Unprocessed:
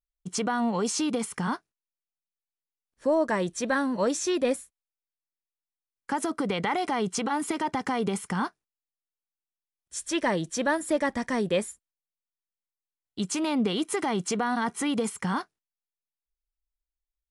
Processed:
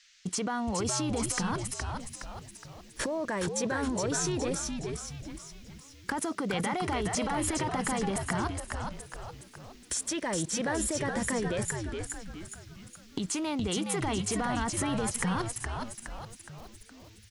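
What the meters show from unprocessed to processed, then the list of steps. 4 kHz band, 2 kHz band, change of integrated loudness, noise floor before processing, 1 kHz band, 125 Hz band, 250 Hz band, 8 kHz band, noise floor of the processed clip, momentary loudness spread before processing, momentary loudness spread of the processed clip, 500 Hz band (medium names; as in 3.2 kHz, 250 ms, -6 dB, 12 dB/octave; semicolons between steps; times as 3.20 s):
-1.0 dB, -2.5 dB, -3.5 dB, under -85 dBFS, -4.0 dB, +3.5 dB, -3.5 dB, +3.0 dB, -53 dBFS, 7 LU, 16 LU, -5.0 dB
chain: recorder AGC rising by 44 dB/s; saturation -12 dBFS, distortion -17 dB; level held to a coarse grid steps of 18 dB; frequency-shifting echo 417 ms, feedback 49%, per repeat -110 Hz, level -4 dB; band noise 1.6–6.6 kHz -66 dBFS; trim +4.5 dB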